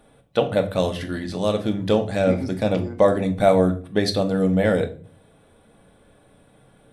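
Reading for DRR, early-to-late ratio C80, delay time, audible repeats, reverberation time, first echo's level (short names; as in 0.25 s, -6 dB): 4.5 dB, 19.0 dB, none, none, 0.40 s, none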